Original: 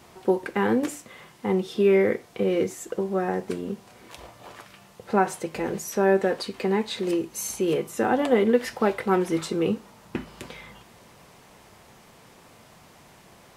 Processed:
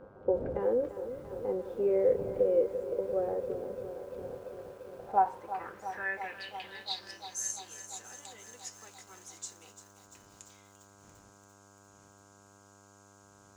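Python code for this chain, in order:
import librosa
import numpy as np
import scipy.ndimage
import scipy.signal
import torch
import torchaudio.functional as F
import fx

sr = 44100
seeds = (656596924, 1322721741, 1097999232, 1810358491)

y = fx.dmg_wind(x, sr, seeds[0], corner_hz=93.0, level_db=-22.0)
y = fx.filter_sweep_bandpass(y, sr, from_hz=530.0, to_hz=6800.0, start_s=4.76, end_s=7.39, q=6.7)
y = fx.dmg_buzz(y, sr, base_hz=100.0, harmonics=16, level_db=-63.0, tilt_db=-2, odd_only=False)
y = fx.echo_crushed(y, sr, ms=343, feedback_pct=80, bits=10, wet_db=-12.0)
y = y * 10.0 ** (3.0 / 20.0)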